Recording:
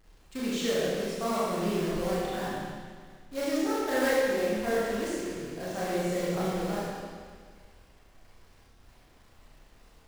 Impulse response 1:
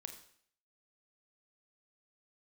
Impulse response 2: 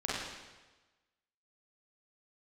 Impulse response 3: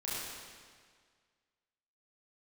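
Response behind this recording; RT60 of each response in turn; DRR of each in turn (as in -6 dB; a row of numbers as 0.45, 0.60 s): 3; 0.60, 1.2, 1.8 s; 5.5, -8.0, -9.0 dB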